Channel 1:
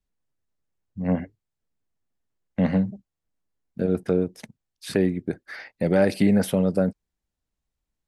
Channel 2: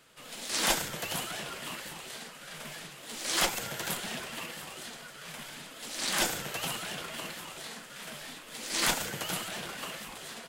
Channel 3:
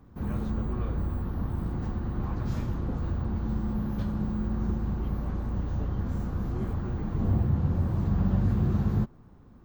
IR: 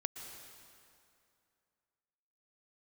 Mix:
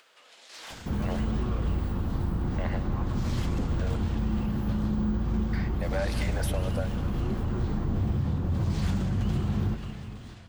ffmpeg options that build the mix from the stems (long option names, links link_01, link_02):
-filter_complex "[0:a]highpass=frequency=620:width=0.5412,highpass=frequency=620:width=1.3066,volume=3dB,asplit=3[link_01][link_02][link_03];[link_01]atrim=end=3.96,asetpts=PTS-STARTPTS,afade=type=out:start_time=3.956:duration=0.004:curve=hsin[link_04];[link_02]atrim=start=3.96:end=5.53,asetpts=PTS-STARTPTS,volume=0[link_05];[link_03]atrim=start=5.53,asetpts=PTS-STARTPTS,afade=type=in:duration=0.004:curve=hsin[link_06];[link_04][link_05][link_06]concat=n=3:v=0:a=1,asplit=2[link_07][link_08];[link_08]volume=-17.5dB[link_09];[1:a]acrossover=split=380 6900:gain=0.0794 1 0.126[link_10][link_11][link_12];[link_10][link_11][link_12]amix=inputs=3:normalize=0,asoftclip=type=tanh:threshold=-28dB,volume=-14.5dB,asplit=2[link_13][link_14];[link_14]volume=-3dB[link_15];[2:a]alimiter=limit=-22.5dB:level=0:latency=1,adelay=700,volume=2dB,asplit=2[link_16][link_17];[link_17]volume=-3dB[link_18];[link_07][link_16]amix=inputs=2:normalize=0,acompressor=threshold=-33dB:ratio=6,volume=0dB[link_19];[3:a]atrim=start_sample=2205[link_20];[link_09][link_15][link_18]amix=inputs=3:normalize=0[link_21];[link_21][link_20]afir=irnorm=-1:irlink=0[link_22];[link_13][link_19][link_22]amix=inputs=3:normalize=0,acompressor=mode=upward:threshold=-50dB:ratio=2.5"